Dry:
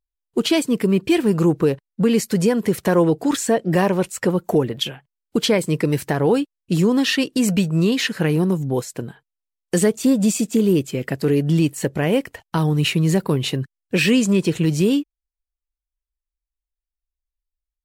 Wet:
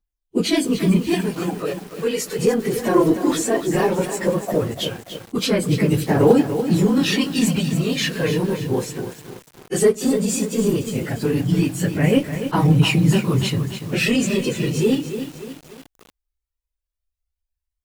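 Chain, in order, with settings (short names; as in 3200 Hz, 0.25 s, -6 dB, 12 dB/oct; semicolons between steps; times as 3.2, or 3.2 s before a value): phase scrambler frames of 50 ms; 1.14–2.39 HPF 550 Hz 6 dB/oct; in parallel at -5 dB: soft clip -13.5 dBFS, distortion -14 dB; on the sum: phaser 0.16 Hz, delay 3 ms, feedback 44%; on a send at -17 dB: reverb RT60 0.45 s, pre-delay 4 ms; on the sum: lo-fi delay 0.29 s, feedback 55%, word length 5-bit, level -9 dB; gain -4.5 dB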